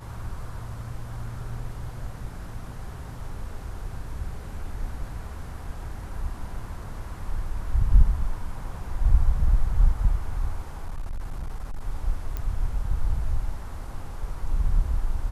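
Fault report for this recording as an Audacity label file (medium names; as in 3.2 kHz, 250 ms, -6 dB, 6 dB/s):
10.760000	11.800000	clipped -27 dBFS
12.370000	12.370000	pop -18 dBFS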